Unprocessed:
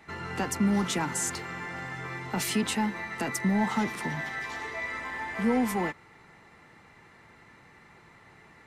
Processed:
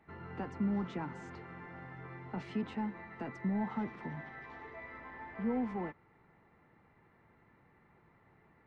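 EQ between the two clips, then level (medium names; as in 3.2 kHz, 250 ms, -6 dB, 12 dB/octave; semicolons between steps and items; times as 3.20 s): tape spacing loss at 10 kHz 43 dB; -7.0 dB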